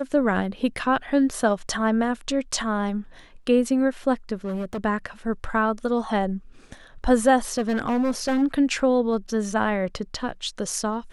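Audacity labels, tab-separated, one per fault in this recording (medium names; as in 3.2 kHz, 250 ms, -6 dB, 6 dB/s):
4.440000	4.850000	clipped -25 dBFS
7.570000	8.430000	clipped -19 dBFS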